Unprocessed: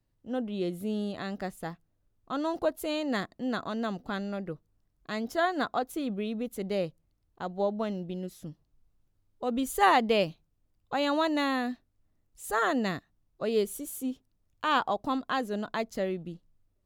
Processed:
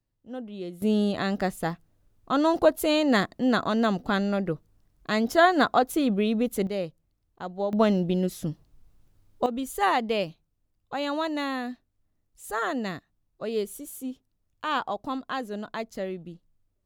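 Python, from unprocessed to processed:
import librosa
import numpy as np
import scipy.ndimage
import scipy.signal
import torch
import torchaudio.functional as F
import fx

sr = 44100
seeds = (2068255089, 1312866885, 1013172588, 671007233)

y = fx.gain(x, sr, db=fx.steps((0.0, -4.5), (0.82, 8.5), (6.67, 0.0), (7.73, 11.0), (9.46, -1.5)))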